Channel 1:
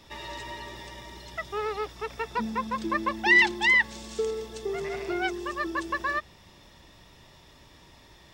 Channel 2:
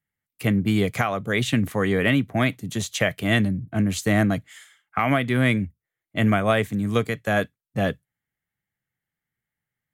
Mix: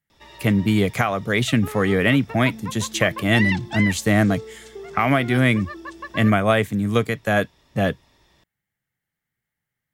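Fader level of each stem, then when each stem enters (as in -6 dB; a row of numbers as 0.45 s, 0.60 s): -5.5 dB, +2.5 dB; 0.10 s, 0.00 s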